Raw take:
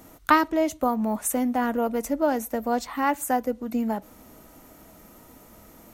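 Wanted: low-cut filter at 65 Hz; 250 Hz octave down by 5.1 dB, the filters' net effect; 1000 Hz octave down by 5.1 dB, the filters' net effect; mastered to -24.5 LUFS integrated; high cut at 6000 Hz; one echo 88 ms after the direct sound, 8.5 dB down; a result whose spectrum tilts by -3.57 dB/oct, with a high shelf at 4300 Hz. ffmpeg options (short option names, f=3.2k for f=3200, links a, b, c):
-af "highpass=65,lowpass=6k,equalizer=f=250:t=o:g=-5.5,equalizer=f=1k:t=o:g=-6,highshelf=f=4.3k:g=-8.5,aecho=1:1:88:0.376,volume=4.5dB"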